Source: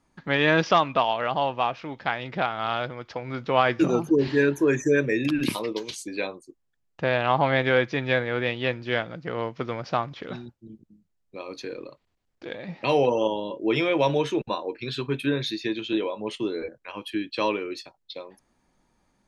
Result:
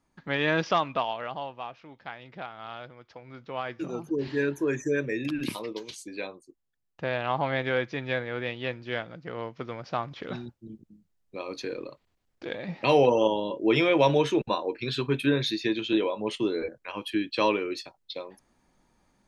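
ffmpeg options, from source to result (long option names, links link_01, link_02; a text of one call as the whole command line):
ffmpeg -i in.wav -af "volume=9dB,afade=type=out:start_time=0.91:duration=0.63:silence=0.398107,afade=type=in:start_time=3.83:duration=0.59:silence=0.446684,afade=type=in:start_time=9.9:duration=0.53:silence=0.446684" out.wav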